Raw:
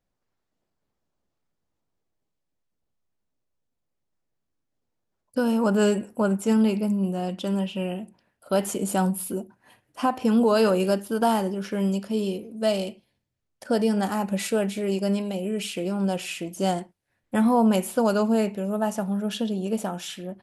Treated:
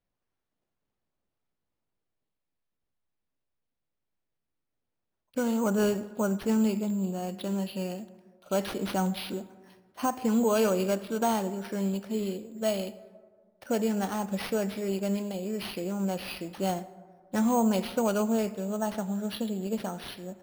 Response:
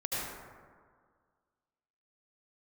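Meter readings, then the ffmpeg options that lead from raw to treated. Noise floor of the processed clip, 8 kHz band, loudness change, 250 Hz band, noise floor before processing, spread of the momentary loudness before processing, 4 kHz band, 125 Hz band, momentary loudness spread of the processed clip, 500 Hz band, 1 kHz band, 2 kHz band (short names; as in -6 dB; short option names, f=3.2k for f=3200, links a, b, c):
-84 dBFS, -3.5 dB, -5.0 dB, -5.0 dB, -80 dBFS, 9 LU, -4.5 dB, -5.0 dB, 10 LU, -5.0 dB, -5.0 dB, -5.0 dB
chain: -filter_complex "[0:a]acrusher=samples=6:mix=1:aa=0.000001,asplit=2[a][b];[1:a]atrim=start_sample=2205[c];[b][c]afir=irnorm=-1:irlink=0,volume=-22dB[d];[a][d]amix=inputs=2:normalize=0,volume=-5.5dB"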